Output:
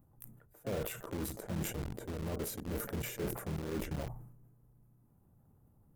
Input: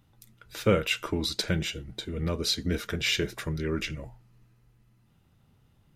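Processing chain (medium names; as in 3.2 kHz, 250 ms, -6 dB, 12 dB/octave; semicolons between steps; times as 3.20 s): FFT filter 810 Hz 0 dB, 2.5 kHz -21 dB, 4.3 kHz -27 dB, 7.4 kHz -3 dB, 13 kHz +13 dB; reverse; compression 10:1, threshold -37 dBFS, peak gain reduction 20 dB; reverse; treble shelf 7.9 kHz -11.5 dB; harmony voices +4 st -7 dB; in parallel at -10 dB: companded quantiser 2-bit; on the sum: decay stretcher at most 67 dB/s; trim -3.5 dB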